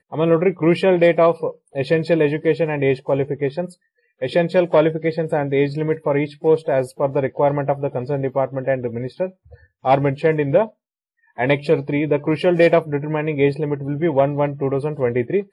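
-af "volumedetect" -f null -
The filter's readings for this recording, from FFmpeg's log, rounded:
mean_volume: -19.1 dB
max_volume: -5.7 dB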